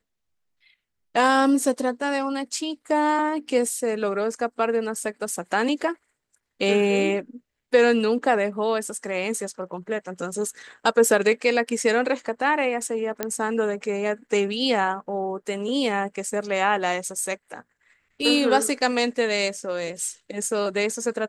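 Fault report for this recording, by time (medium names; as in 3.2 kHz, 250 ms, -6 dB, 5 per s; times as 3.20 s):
13.23 s: pop -9 dBFS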